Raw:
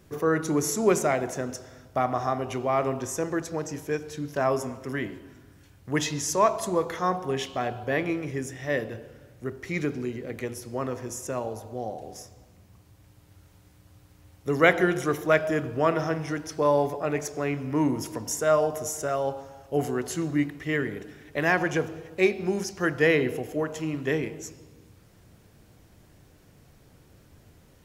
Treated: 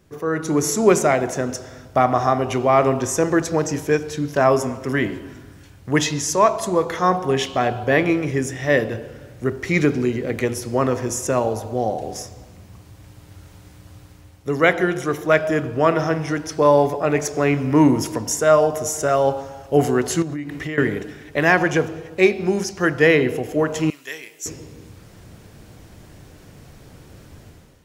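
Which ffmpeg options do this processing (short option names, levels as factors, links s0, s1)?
-filter_complex "[0:a]asettb=1/sr,asplit=3[s0][s1][s2];[s0]atrim=end=20.224[s3];[s1]atrim=start=20.22:end=20.78,asetpts=PTS-STARTPTS,afade=t=in:d=0.004:c=qsin,afade=t=out:st=0.556:d=0.004:c=qsin,acompressor=threshold=0.02:ratio=20:attack=3.2:release=140:knee=1:detection=peak[s4];[s2]atrim=start=20.776[s5];[s3][s4]acrossfade=d=0.004:c1=hsin:c2=qsin[s6];[s6][s5]acrossfade=d=0.004:c1=qsin:c2=hsin,asettb=1/sr,asplit=3[s7][s8][s9];[s7]atrim=end=23.904[s10];[s8]atrim=start=23.9:end=24.46,asetpts=PTS-STARTPTS,afade=t=in:d=0.004:c=qsin,afade=t=out:st=0.556:d=0.004:c=qsin,aderivative[s11];[s9]atrim=start=24.456[s12];[s10][s11]acrossfade=d=0.004:c1=hsin:c2=qsin[s13];[s13][s12]acrossfade=d=0.004:c1=qsin:c2=hsin,dynaudnorm=f=130:g=7:m=4.22,equalizer=f=13000:w=1.4:g=-4.5,volume=0.891"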